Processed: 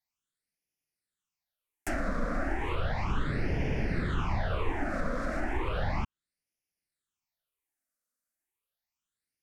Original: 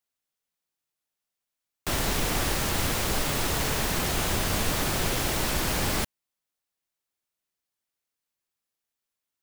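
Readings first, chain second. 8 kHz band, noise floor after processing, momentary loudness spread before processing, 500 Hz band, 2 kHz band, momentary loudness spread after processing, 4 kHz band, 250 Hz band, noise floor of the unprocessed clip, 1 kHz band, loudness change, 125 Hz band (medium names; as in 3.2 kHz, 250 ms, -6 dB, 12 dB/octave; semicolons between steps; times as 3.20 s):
-24.5 dB, under -85 dBFS, 2 LU, -3.5 dB, -5.5 dB, 3 LU, -17.5 dB, -2.5 dB, under -85 dBFS, -4.5 dB, -7.0 dB, -2.0 dB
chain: phase shifter stages 8, 0.34 Hz, lowest notch 110–1200 Hz; low-pass that closes with the level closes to 1.7 kHz, closed at -24.5 dBFS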